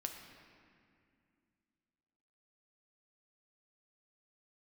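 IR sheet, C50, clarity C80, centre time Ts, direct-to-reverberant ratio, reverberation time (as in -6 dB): 5.5 dB, 6.5 dB, 50 ms, 3.0 dB, 2.3 s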